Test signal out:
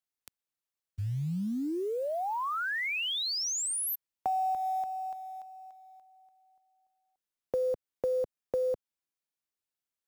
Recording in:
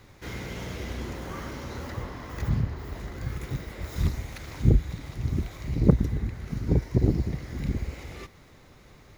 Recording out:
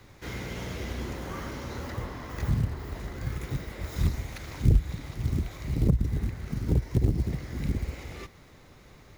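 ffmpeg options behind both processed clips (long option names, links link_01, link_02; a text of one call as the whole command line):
ffmpeg -i in.wav -filter_complex "[0:a]acrusher=bits=7:mode=log:mix=0:aa=0.000001,acrossover=split=140[link_01][link_02];[link_02]acompressor=threshold=-28dB:ratio=5[link_03];[link_01][link_03]amix=inputs=2:normalize=0" out.wav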